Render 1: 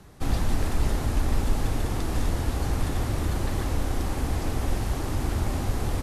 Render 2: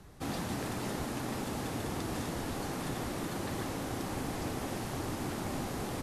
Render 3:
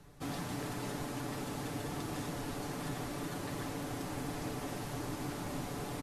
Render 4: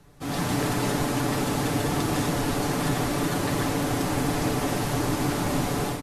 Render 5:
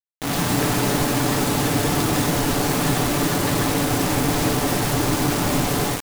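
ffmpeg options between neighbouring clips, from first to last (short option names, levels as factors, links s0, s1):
-af "afftfilt=real='re*lt(hypot(re,im),0.316)':imag='im*lt(hypot(re,im),0.316)':win_size=1024:overlap=0.75,volume=0.631"
-af "asoftclip=type=hard:threshold=0.0447,aecho=1:1:6.9:0.5,volume=0.631"
-af "dynaudnorm=f=210:g=3:m=3.76,volume=1.33"
-af "acrusher=bits=4:mix=0:aa=0.000001,volume=1.68"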